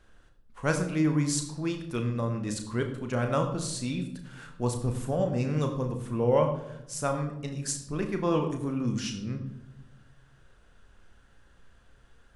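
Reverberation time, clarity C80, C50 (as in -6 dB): 0.90 s, 10.5 dB, 8.5 dB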